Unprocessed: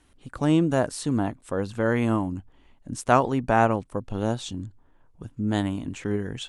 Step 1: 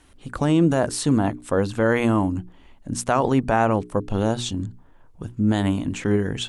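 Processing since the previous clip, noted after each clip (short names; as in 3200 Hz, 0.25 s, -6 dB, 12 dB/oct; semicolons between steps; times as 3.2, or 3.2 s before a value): notches 60/120/180/240/300/360/420 Hz; maximiser +14.5 dB; gain -7.5 dB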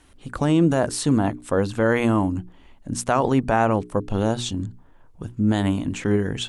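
nothing audible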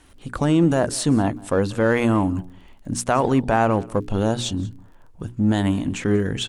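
in parallel at -11 dB: hard clip -24.5 dBFS, distortion -4 dB; on the sum: crackle 26/s -44 dBFS; echo 0.188 s -23 dB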